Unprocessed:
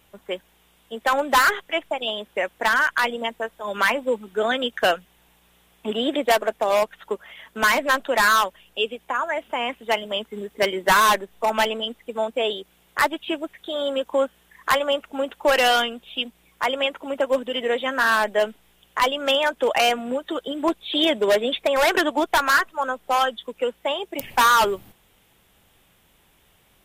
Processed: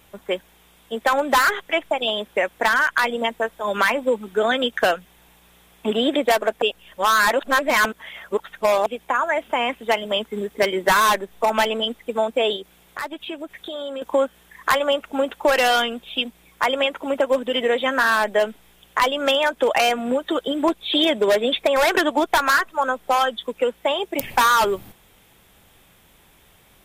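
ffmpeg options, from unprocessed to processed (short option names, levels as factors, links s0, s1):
-filter_complex "[0:a]asettb=1/sr,asplit=3[s0][s1][s2];[s0]atrim=end=12.564[s3];[s1]atrim=start=12.56:end=14.02,asetpts=PTS-STARTPTS,afade=t=in:d=0.004:c=qsin,afade=t=out:st=1.456:d=0.004:c=qsin,acompressor=threshold=0.0158:ratio=3:attack=3.2:release=140:knee=1:detection=peak[s4];[s2]atrim=start=14.016[s5];[s3][s4]acrossfade=d=0.004:c1=hsin:c2=qsin[s6];[s6][s5]acrossfade=d=0.004:c1=qsin:c2=hsin,asplit=3[s7][s8][s9];[s7]atrim=end=6.622[s10];[s8]atrim=start=6.618:end=8.862,asetpts=PTS-STARTPTS,areverse[s11];[s9]atrim=start=8.858[s12];[s10][s11]acrossfade=d=0.004:c1=hsin:c2=hsin[s13];[s13][s12]acrossfade=d=0.004:c1=hsin:c2=hsin,acompressor=threshold=0.0794:ratio=2.5,bandreject=f=2900:w=21,volume=1.88"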